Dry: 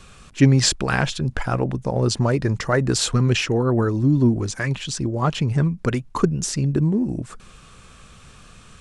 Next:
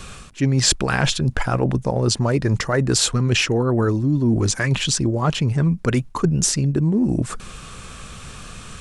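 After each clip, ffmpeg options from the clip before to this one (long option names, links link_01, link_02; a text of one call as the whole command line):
ffmpeg -i in.wav -af "areverse,acompressor=threshold=-25dB:ratio=6,areverse,highshelf=frequency=9500:gain=5,volume=9dB" out.wav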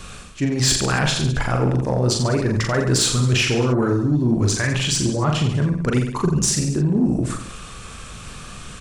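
ffmpeg -i in.wav -af "aeval=exprs='0.75*(cos(1*acos(clip(val(0)/0.75,-1,1)))-cos(1*PI/2))+0.0531*(cos(3*acos(clip(val(0)/0.75,-1,1)))-cos(3*PI/2))':channel_layout=same,aecho=1:1:40|86|138.9|199.7|269.7:0.631|0.398|0.251|0.158|0.1,acontrast=90,volume=-6.5dB" out.wav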